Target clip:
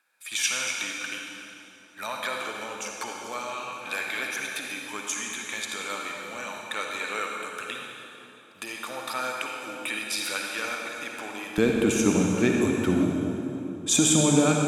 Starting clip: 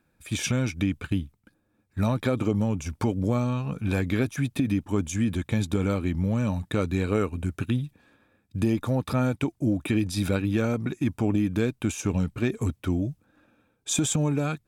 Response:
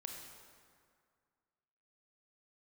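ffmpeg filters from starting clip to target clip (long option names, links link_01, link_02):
-filter_complex "[0:a]asetnsamples=nb_out_samples=441:pad=0,asendcmd='11.58 highpass f 210',highpass=1200[link_01];[1:a]atrim=start_sample=2205,asetrate=25578,aresample=44100[link_02];[link_01][link_02]afir=irnorm=-1:irlink=0,volume=7dB"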